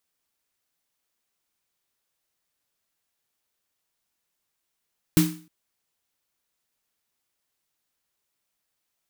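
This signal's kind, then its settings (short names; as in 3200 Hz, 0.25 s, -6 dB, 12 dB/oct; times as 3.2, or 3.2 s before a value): snare drum length 0.31 s, tones 170 Hz, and 310 Hz, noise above 880 Hz, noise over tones -8 dB, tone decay 0.40 s, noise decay 0.39 s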